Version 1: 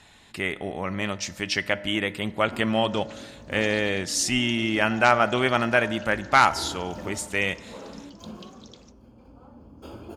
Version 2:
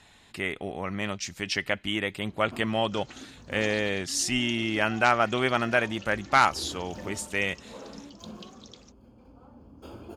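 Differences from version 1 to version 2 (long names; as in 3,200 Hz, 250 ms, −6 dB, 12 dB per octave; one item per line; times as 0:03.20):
second sound +3.5 dB
reverb: off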